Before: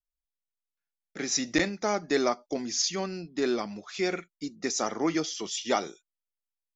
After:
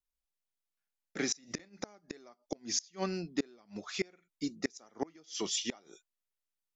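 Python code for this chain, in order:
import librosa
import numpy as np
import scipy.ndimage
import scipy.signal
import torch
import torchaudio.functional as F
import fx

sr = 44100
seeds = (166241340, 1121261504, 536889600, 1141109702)

y = fx.vibrato(x, sr, rate_hz=2.9, depth_cents=12.0)
y = fx.gate_flip(y, sr, shuts_db=-20.0, range_db=-30)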